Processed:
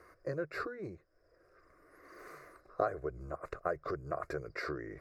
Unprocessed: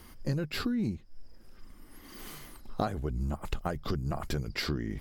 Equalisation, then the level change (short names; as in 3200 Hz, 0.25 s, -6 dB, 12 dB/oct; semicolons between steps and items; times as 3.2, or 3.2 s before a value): band-pass 770 Hz, Q 0.82; fixed phaser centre 860 Hz, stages 6; +5.0 dB